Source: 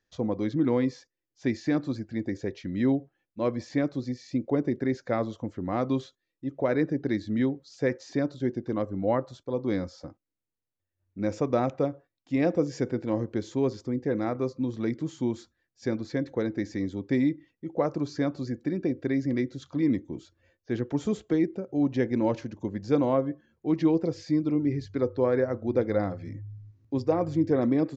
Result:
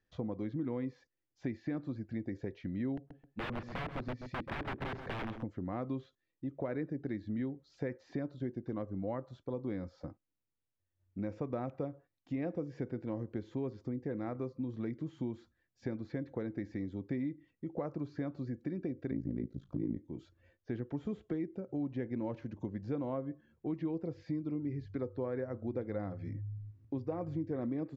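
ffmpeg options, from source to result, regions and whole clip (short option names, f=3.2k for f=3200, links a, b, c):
-filter_complex "[0:a]asettb=1/sr,asplit=3[a][b][c];[a]atrim=end=2.974[d];[b]atrim=start=2.97:end=5.43,asetpts=PTS-STARTPTS,afade=t=in:d=0.004:c=qsin,afade=t=out:st=2.456:d=0.004:c=qsin,aeval=exprs='(mod(20*val(0)+1,2)-1)/20':c=same,asplit=2[e][f];[f]adelay=132,lowpass=f=1.7k:p=1,volume=-10dB,asplit=2[g][h];[h]adelay=132,lowpass=f=1.7k:p=1,volume=0.22,asplit=2[i][j];[j]adelay=132,lowpass=f=1.7k:p=1,volume=0.22[k];[e][g][i][k]amix=inputs=4:normalize=0,atrim=end_sample=108486[l];[c]atrim=start=5.426[m];[d][l]acrossfade=d=0.004:c1=hsin:c2=qsin[n];[n][m]acrossfade=d=0.004:c1=qsin:c2=hsin,asettb=1/sr,asplit=3[o][p][q];[o]atrim=end=19.114[r];[p]atrim=start=19.11:end=19.97,asetpts=PTS-STARTPTS,afade=t=in:d=0.004:c=qsin,afade=t=out:st=0.856:d=0.004:c=qsin,tremolo=f=55:d=0.947,tiltshelf=f=720:g=8[s];[q]atrim=start=19.966[t];[r][s]acrossfade=d=0.004:c1=hsin:c2=qsin[u];[u][t]acrossfade=d=0.004:c1=qsin:c2=hsin,acrossover=split=3600[v][w];[w]acompressor=threshold=-59dB:ratio=4:attack=1:release=60[x];[v][x]amix=inputs=2:normalize=0,bass=f=250:g=4,treble=f=4k:g=-9,acompressor=threshold=-34dB:ratio=3,volume=-3dB"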